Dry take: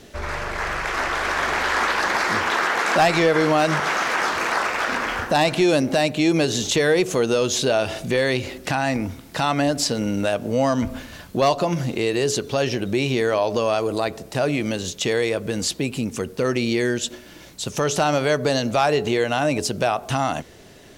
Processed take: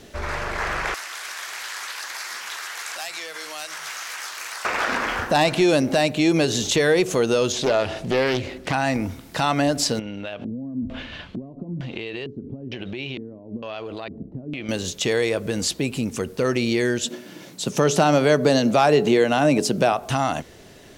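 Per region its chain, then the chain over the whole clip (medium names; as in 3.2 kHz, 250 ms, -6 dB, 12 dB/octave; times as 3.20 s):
0.94–4.65 s: differentiator + bands offset in time highs, lows 100 ms, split 190 Hz + three bands compressed up and down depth 70%
7.52–8.73 s: low-pass 3.8 kHz 6 dB/octave + loudspeaker Doppler distortion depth 0.44 ms
9.99–14.69 s: compression 16:1, threshold -28 dBFS + LFO low-pass square 1.1 Hz 250–3100 Hz
17.05–19.93 s: high-pass 150 Hz 24 dB/octave + bass shelf 400 Hz +8 dB
whole clip: none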